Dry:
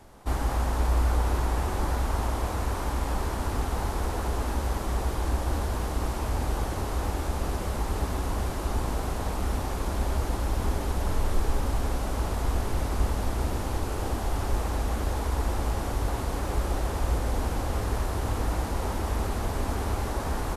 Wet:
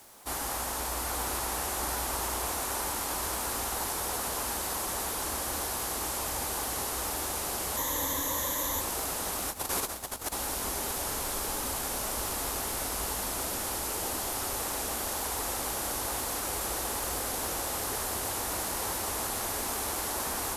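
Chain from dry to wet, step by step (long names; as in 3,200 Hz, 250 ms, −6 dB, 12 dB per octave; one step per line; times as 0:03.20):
feedback delay with all-pass diffusion 891 ms, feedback 44%, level −5.5 dB
0:09.48–0:10.33: compressor whose output falls as the input rises −29 dBFS, ratio −0.5
RIAA equalisation recording
bit reduction 9 bits
0:07.77–0:08.81: EQ curve with evenly spaced ripples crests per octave 1.1, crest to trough 12 dB
level −2.5 dB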